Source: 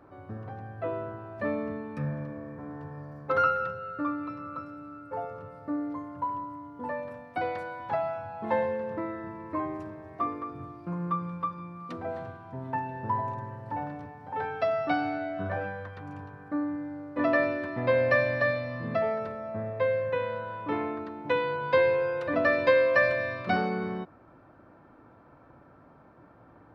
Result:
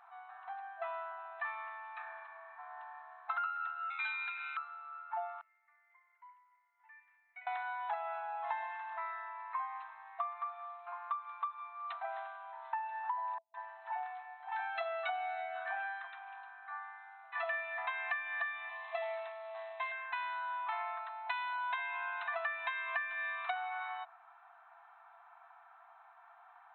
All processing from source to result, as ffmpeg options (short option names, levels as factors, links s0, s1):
-filter_complex "[0:a]asettb=1/sr,asplit=3[s0][s1][s2];[s0]atrim=end=3.904[s3];[s1]atrim=start=3.9:end=4.57,asetpts=PTS-STARTPTS,afade=t=in:d=0.004:c=qsin,afade=t=out:st=0.666:d=0.004:c=qsin,lowpass=f=2300:t=q:w=0.5098,lowpass=f=2300:t=q:w=0.6013,lowpass=f=2300:t=q:w=0.9,lowpass=f=2300:t=q:w=2.563,afreqshift=-2700,aeval=exprs='(tanh(28.2*val(0)+0.7)-tanh(0.7))/28.2':c=same[s4];[s2]atrim=start=4.566[s5];[s3][s4]acrossfade=d=0.004:c1=hsin:c2=qsin[s6];[s6][s5]acrossfade=d=0.004:c1=qsin:c2=hsin,asettb=1/sr,asplit=3[s7][s8][s9];[s7]atrim=end=5.414[s10];[s8]atrim=start=5.41:end=7.47,asetpts=PTS-STARTPTS,afade=t=in:d=0.004:c=qsin,afade=t=out:st=2.056:d=0.004:c=qsin,bandpass=f=2100:t=q:w=11,flanger=delay=6:depth=1.4:regen=73:speed=1.2:shape=sinusoidal[s11];[s9]atrim=start=7.466[s12];[s10][s11]acrossfade=d=0.004:c1=hsin:c2=qsin[s13];[s13][s12]acrossfade=d=0.004:c1=qsin:c2=hsin,asettb=1/sr,asplit=3[s14][s15][s16];[s14]atrim=end=13.384[s17];[s15]atrim=start=13.38:end=17.78,asetpts=PTS-STARTPTS,afade=t=in:d=0.004:c=qsin,afade=t=out:st=4.396:d=0.004:c=qsin,asplit=2[s18][s19];[s19]adelay=47,volume=0.211[s20];[s18][s20]amix=inputs=2:normalize=0,atrim=end_sample=194040,acrossover=split=240|1200[s21][s22][s23];[s23]adelay=160[s24];[s22]adelay=190[s25];[s21][s25][s24]amix=inputs=3:normalize=0,atrim=end_sample=194040[s26];[s16]atrim=start=17.776[s27];[s17][s26]acrossfade=d=0.004:c1=hsin:c2=qsin[s28];[s28][s27]acrossfade=d=0.004:c1=qsin:c2=hsin,asettb=1/sr,asplit=3[s29][s30][s31];[s29]atrim=end=18.694[s32];[s30]atrim=start=18.69:end=19.92,asetpts=PTS-STARTPTS,afade=t=in:d=0.004:c=qsin,afade=t=out:st=1.226:d=0.004:c=qsin,equalizer=f=1400:t=o:w=0.3:g=-13.5,acrusher=bits=6:mode=log:mix=0:aa=0.000001,asplit=2[s33][s34];[s34]adelay=20,volume=0.501[s35];[s33][s35]amix=inputs=2:normalize=0,atrim=end_sample=54243[s36];[s31]atrim=start=19.916[s37];[s32][s36]acrossfade=d=0.004:c1=hsin:c2=qsin[s38];[s38][s37]acrossfade=d=0.004:c1=qsin:c2=hsin,afftfilt=real='re*between(b*sr/4096,660,4100)':imag='im*between(b*sr/4096,660,4100)':win_size=4096:overlap=0.75,acompressor=threshold=0.0178:ratio=10,volume=1.12"